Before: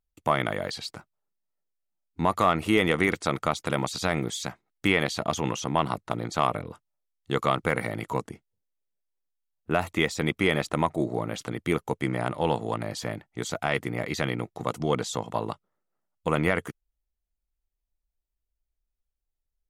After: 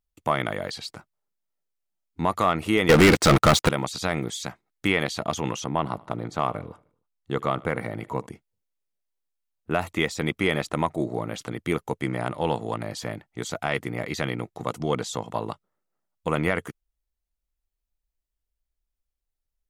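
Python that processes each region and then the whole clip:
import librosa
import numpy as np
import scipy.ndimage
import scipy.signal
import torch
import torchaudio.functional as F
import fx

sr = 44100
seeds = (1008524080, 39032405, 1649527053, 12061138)

y = fx.chain(x, sr, fx.high_shelf(hz=3400.0, db=-5.5),
    fx.leveller(passes=5), at=(2.89, 3.69))
y = fx.chain(y, sr, fx.high_shelf(hz=2100.0, db=-8.0),
    fx.echo_feedback(ms=76, feedback_pct=57, wet_db=-23.5), at=(5.66, 8.27))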